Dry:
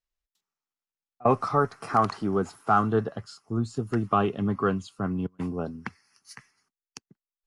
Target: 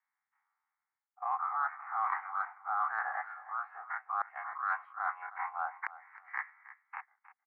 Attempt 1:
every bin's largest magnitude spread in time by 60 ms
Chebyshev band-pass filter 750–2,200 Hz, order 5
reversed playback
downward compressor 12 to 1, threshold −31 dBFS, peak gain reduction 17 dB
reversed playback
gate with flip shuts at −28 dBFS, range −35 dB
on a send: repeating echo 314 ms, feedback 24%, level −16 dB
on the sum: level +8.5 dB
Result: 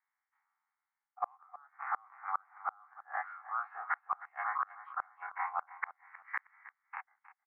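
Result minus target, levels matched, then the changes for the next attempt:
downward compressor: peak gain reduction −7.5 dB
change: downward compressor 12 to 1, threshold −39 dBFS, peak gain reduction 24 dB

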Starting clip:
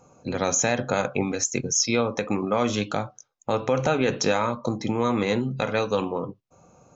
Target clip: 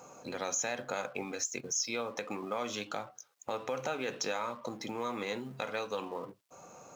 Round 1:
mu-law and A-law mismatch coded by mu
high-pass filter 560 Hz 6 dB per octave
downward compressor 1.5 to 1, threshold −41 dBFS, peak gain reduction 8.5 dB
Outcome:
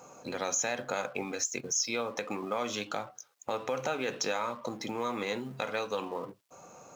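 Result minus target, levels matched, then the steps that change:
downward compressor: peak gain reduction −3 dB
change: downward compressor 1.5 to 1, threshold −49.5 dBFS, peak gain reduction 11 dB

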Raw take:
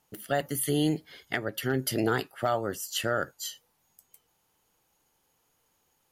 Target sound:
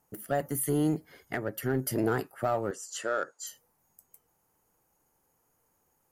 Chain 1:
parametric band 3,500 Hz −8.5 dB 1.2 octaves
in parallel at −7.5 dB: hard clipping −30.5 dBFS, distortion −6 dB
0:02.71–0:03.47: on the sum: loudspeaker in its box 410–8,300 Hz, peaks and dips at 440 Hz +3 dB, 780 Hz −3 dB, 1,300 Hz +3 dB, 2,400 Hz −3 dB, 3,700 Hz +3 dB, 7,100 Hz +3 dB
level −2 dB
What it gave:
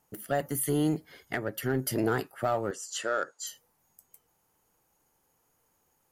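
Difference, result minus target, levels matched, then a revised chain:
4,000 Hz band +4.5 dB
parametric band 3,500 Hz −15 dB 1.2 octaves
in parallel at −7.5 dB: hard clipping −30.5 dBFS, distortion −6 dB
0:02.71–0:03.47: on the sum: loudspeaker in its box 410–8,300 Hz, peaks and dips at 440 Hz +3 dB, 780 Hz −3 dB, 1,300 Hz +3 dB, 2,400 Hz −3 dB, 3,700 Hz +3 dB, 7,100 Hz +3 dB
level −2 dB

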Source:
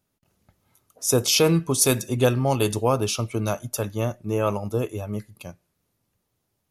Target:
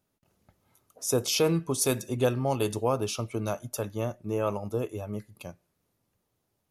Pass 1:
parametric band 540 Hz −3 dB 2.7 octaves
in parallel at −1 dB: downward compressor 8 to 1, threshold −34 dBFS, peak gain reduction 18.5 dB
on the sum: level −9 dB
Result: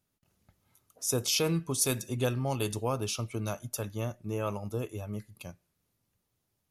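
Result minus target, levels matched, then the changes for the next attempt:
500 Hz band −3.0 dB
change: parametric band 540 Hz +3.5 dB 2.7 octaves

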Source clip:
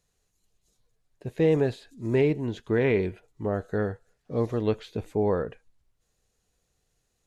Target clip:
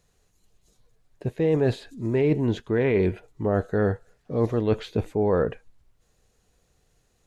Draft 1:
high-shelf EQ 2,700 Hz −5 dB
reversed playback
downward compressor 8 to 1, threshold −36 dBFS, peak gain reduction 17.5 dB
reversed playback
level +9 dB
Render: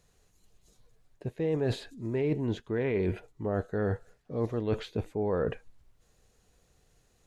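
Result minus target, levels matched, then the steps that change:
downward compressor: peak gain reduction +7.5 dB
change: downward compressor 8 to 1, threshold −27.5 dBFS, peak gain reduction 10 dB

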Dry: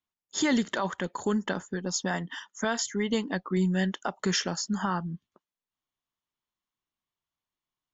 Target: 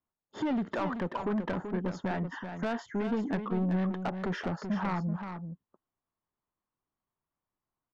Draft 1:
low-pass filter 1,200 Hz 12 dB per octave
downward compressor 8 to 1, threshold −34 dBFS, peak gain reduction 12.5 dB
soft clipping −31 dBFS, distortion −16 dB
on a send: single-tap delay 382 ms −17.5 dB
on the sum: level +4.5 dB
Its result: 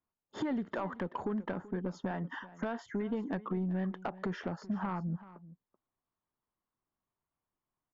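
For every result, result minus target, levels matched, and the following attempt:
downward compressor: peak gain reduction +8 dB; echo-to-direct −9.5 dB
low-pass filter 1,200 Hz 12 dB per octave
downward compressor 8 to 1, threshold −25 dBFS, peak gain reduction 4.5 dB
soft clipping −31 dBFS, distortion −10 dB
on a send: single-tap delay 382 ms −17.5 dB
on the sum: level +4.5 dB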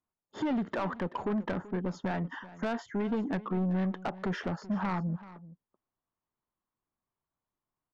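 echo-to-direct −9.5 dB
low-pass filter 1,200 Hz 12 dB per octave
downward compressor 8 to 1, threshold −25 dBFS, peak gain reduction 4.5 dB
soft clipping −31 dBFS, distortion −10 dB
on a send: single-tap delay 382 ms −8 dB
on the sum: level +4.5 dB

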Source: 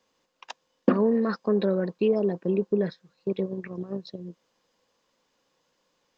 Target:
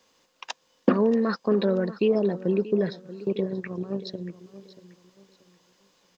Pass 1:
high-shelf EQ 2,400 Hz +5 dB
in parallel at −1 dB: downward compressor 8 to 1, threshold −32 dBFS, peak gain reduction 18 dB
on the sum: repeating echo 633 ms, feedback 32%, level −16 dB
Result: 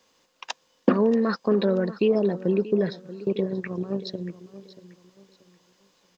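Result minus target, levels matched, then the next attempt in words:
downward compressor: peak gain reduction −7.5 dB
high-shelf EQ 2,400 Hz +5 dB
in parallel at −1 dB: downward compressor 8 to 1, threshold −40.5 dBFS, peak gain reduction 25.5 dB
on the sum: repeating echo 633 ms, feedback 32%, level −16 dB

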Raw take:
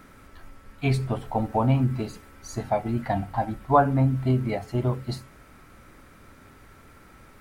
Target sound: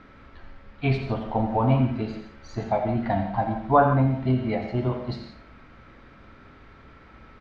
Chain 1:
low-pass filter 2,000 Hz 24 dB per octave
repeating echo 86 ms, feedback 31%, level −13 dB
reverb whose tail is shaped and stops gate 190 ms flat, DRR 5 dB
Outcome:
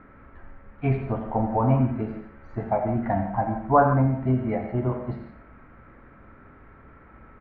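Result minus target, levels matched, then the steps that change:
4,000 Hz band −16.5 dB
change: low-pass filter 4,300 Hz 24 dB per octave

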